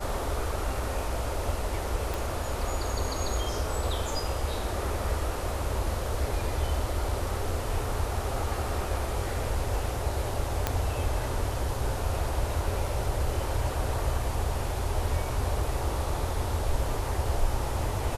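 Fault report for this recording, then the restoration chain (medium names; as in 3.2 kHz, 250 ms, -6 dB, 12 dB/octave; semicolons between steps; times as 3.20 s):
2.14 s: pop
10.67 s: pop -10 dBFS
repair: de-click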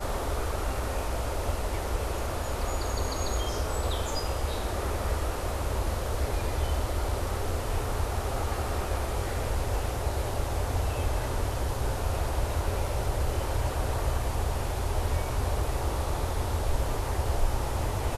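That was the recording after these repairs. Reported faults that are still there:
nothing left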